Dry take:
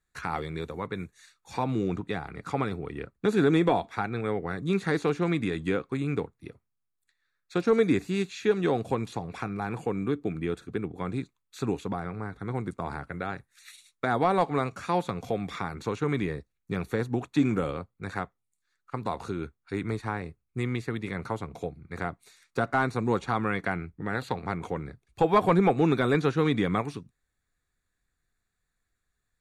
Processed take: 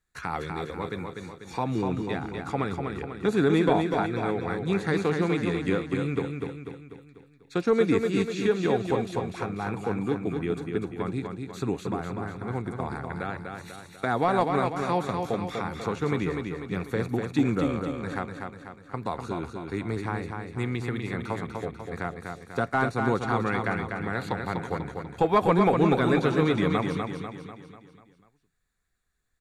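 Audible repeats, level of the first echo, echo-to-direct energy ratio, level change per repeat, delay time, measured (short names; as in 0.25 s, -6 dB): 5, -5.0 dB, -4.0 dB, -6.0 dB, 0.246 s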